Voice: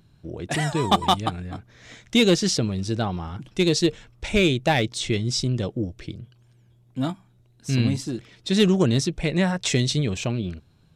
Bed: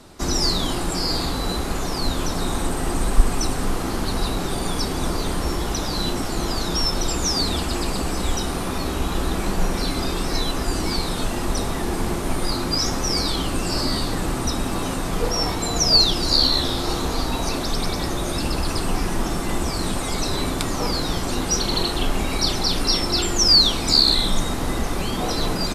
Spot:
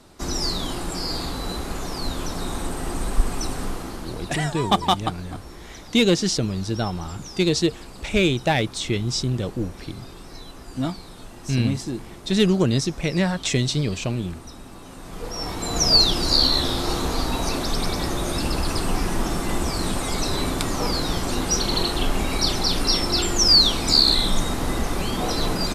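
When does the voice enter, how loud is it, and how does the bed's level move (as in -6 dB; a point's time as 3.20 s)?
3.80 s, 0.0 dB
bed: 3.62 s -4.5 dB
4.58 s -17 dB
14.84 s -17 dB
15.83 s -0.5 dB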